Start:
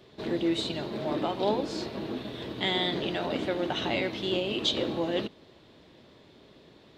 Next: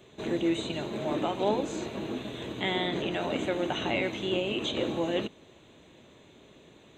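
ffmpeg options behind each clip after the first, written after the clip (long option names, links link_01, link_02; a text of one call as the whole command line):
ffmpeg -i in.wav -filter_complex "[0:a]acrossover=split=3000[link_01][link_02];[link_02]acompressor=threshold=-43dB:ratio=4:attack=1:release=60[link_03];[link_01][link_03]amix=inputs=2:normalize=0,superequalizer=12b=1.41:14b=0.282:15b=2.82" out.wav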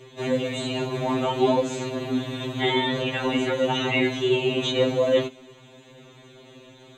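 ffmpeg -i in.wav -af "afftfilt=real='re*2.45*eq(mod(b,6),0)':imag='im*2.45*eq(mod(b,6),0)':win_size=2048:overlap=0.75,volume=9dB" out.wav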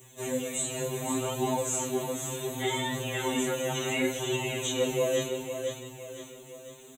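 ffmpeg -i in.wav -af "aexciter=amount=10.5:drive=8.4:freq=6900,aecho=1:1:507|1014|1521|2028|2535:0.473|0.218|0.1|0.0461|0.0212,flanger=delay=16.5:depth=5.2:speed=0.68,volume=-4.5dB" out.wav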